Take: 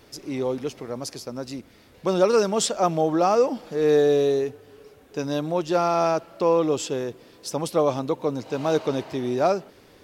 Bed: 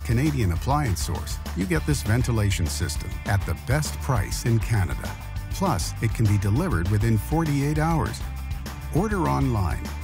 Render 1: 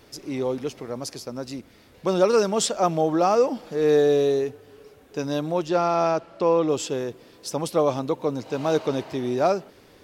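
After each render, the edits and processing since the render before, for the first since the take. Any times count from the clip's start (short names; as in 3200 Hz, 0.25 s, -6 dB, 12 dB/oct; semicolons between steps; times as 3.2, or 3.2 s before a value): 5.68–6.69 air absorption 54 m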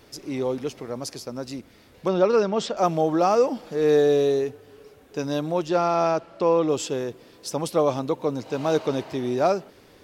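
2.08–2.77 air absorption 160 m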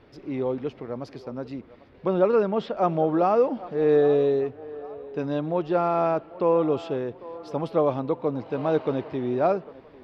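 air absorption 370 m; narrowing echo 0.799 s, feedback 42%, band-pass 830 Hz, level -16 dB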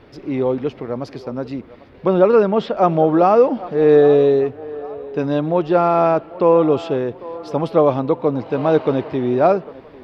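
gain +8 dB; limiter -2 dBFS, peak gain reduction 1 dB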